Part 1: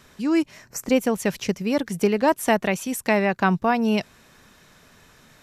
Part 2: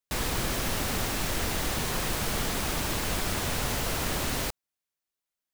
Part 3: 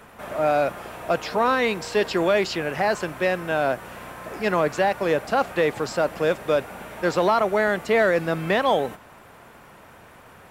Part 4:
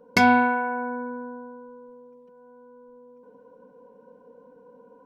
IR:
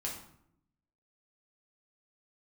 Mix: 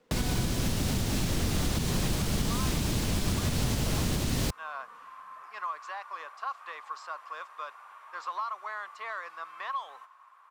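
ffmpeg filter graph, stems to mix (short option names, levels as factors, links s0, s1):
-filter_complex "[0:a]highshelf=f=4800:g=-9,aeval=exprs='val(0)*sgn(sin(2*PI*400*n/s))':c=same,volume=0.141[s0];[1:a]equalizer=f=210:w=0.51:g=12.5,volume=1.33[s1];[2:a]highpass=f=1100:t=q:w=12,adynamicequalizer=threshold=0.0224:dfrequency=5100:dqfactor=0.83:tfrequency=5100:tqfactor=0.83:attack=5:release=100:ratio=0.375:range=2.5:mode=boostabove:tftype=bell,adelay=1100,volume=0.106[s2];[3:a]volume=0.178[s3];[s0][s1][s2][s3]amix=inputs=4:normalize=0,highshelf=f=11000:g=-10.5,acrossover=split=130|3000[s4][s5][s6];[s5]acompressor=threshold=0.0282:ratio=6[s7];[s4][s7][s6]amix=inputs=3:normalize=0,alimiter=limit=0.119:level=0:latency=1:release=135"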